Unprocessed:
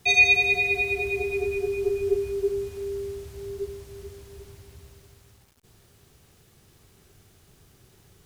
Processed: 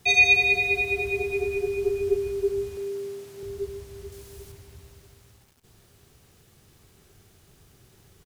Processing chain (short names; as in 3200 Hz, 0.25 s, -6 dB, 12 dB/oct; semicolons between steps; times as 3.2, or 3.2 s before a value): 2.77–3.43 HPF 140 Hz 24 dB/oct; 4.12–4.52 high shelf 5200 Hz +8 dB; echo 0.14 s -13.5 dB